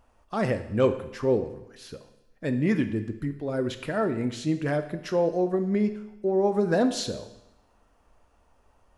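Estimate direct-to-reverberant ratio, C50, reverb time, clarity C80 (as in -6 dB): 8.5 dB, 11.5 dB, 0.90 s, 13.5 dB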